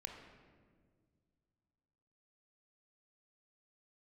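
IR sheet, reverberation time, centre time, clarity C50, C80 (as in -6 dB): 1.8 s, 45 ms, 4.5 dB, 6.0 dB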